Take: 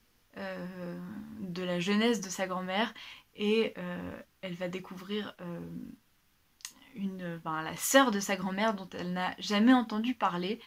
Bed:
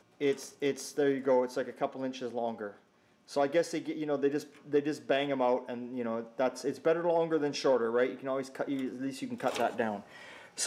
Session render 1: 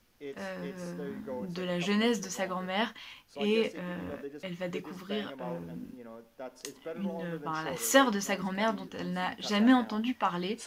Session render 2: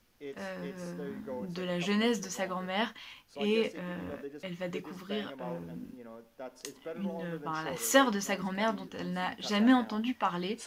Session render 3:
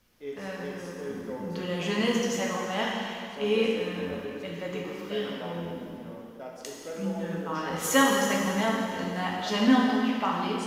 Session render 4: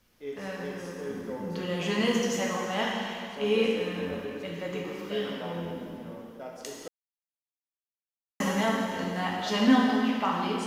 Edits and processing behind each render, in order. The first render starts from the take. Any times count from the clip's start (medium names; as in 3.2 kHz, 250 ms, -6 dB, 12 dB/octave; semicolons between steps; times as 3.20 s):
add bed -13 dB
trim -1 dB
plate-style reverb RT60 2.4 s, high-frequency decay 0.95×, DRR -2.5 dB
6.88–8.40 s: mute